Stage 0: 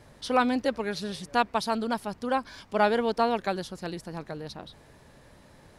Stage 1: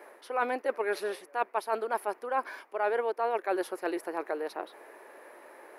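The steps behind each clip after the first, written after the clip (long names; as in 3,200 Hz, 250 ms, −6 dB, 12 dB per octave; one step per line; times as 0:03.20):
Chebyshev high-pass filter 350 Hz, order 4
flat-topped bell 5,100 Hz −14.5 dB
reversed playback
downward compressor 6 to 1, threshold −34 dBFS, peak gain reduction 15.5 dB
reversed playback
level +7.5 dB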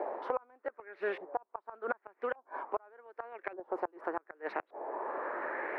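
gate with flip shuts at −22 dBFS, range −32 dB
auto-filter low-pass saw up 0.85 Hz 720–2,500 Hz
multiband upward and downward compressor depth 100%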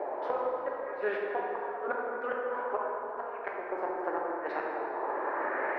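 dense smooth reverb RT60 4 s, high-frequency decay 0.45×, pre-delay 0 ms, DRR −3.5 dB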